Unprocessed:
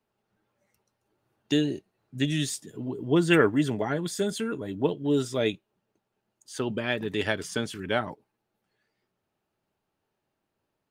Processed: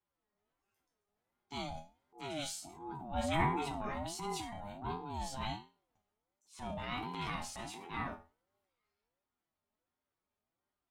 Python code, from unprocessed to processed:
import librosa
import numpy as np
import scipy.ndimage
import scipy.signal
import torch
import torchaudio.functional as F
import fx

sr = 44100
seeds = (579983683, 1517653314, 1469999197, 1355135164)

y = fx.resonator_bank(x, sr, root=52, chord='major', decay_s=0.32)
y = fx.transient(y, sr, attack_db=-8, sustain_db=5)
y = fx.ring_lfo(y, sr, carrier_hz=500.0, swing_pct=20, hz=1.4)
y = y * 10.0 ** (8.5 / 20.0)